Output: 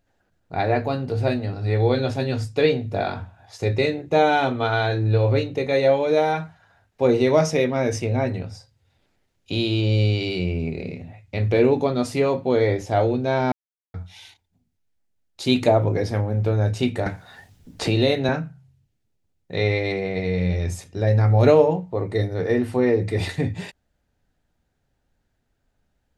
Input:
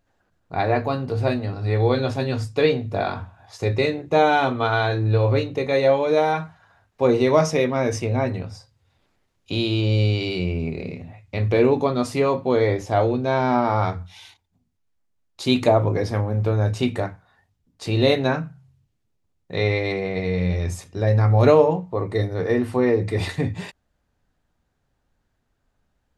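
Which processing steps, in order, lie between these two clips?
peaking EQ 1.1 kHz -7 dB 0.38 oct; 13.52–13.94 s: mute; 17.06–18.29 s: three bands compressed up and down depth 70%

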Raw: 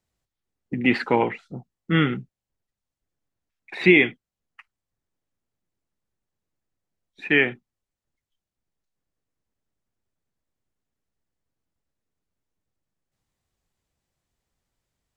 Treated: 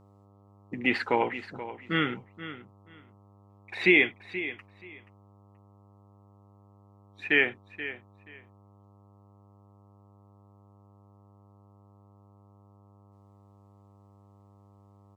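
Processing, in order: peaking EQ 150 Hz -9.5 dB 2 oct; mains buzz 100 Hz, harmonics 13, -55 dBFS -5 dB/octave; on a send: feedback delay 479 ms, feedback 19%, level -13.5 dB; on the sum: trim -3 dB

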